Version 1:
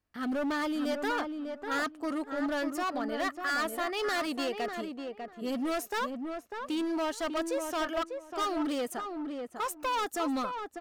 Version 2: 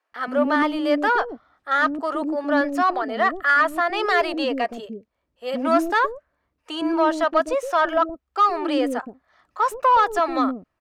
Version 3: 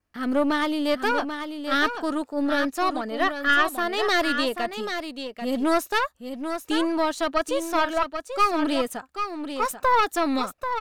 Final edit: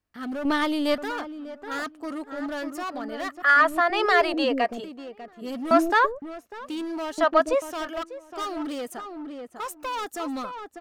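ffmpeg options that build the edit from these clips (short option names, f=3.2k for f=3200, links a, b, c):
-filter_complex "[1:a]asplit=3[a][b][c];[0:a]asplit=5[d][e][f][g][h];[d]atrim=end=0.452[i];[2:a]atrim=start=0.448:end=0.982[j];[e]atrim=start=0.978:end=3.422[k];[a]atrim=start=3.418:end=4.842[l];[f]atrim=start=4.838:end=5.712[m];[b]atrim=start=5.708:end=6.222[n];[g]atrim=start=6.218:end=7.182[o];[c]atrim=start=7.178:end=7.622[p];[h]atrim=start=7.618[q];[i][j]acrossfade=d=0.004:c1=hsin:c2=hsin[r];[r][k]acrossfade=d=0.004:c1=hsin:c2=hsin[s];[s][l]acrossfade=d=0.004:c1=hsin:c2=hsin[t];[t][m]acrossfade=d=0.004:c1=hsin:c2=hsin[u];[u][n]acrossfade=d=0.004:c1=hsin:c2=hsin[v];[v][o]acrossfade=d=0.004:c1=hsin:c2=hsin[w];[w][p]acrossfade=d=0.004:c1=hsin:c2=hsin[x];[x][q]acrossfade=d=0.004:c1=hsin:c2=hsin"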